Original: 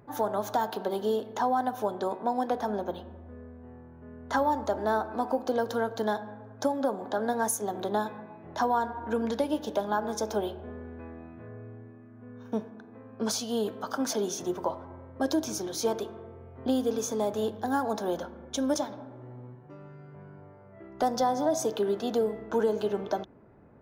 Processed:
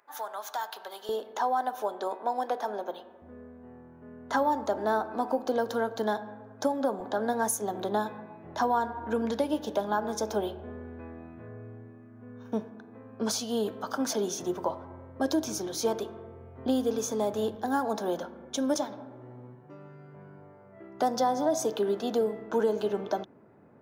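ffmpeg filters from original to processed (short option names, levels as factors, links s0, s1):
-af "asetnsamples=n=441:p=0,asendcmd='1.09 highpass f 430;3.22 highpass f 130;7 highpass f 51;17.55 highpass f 130',highpass=1100"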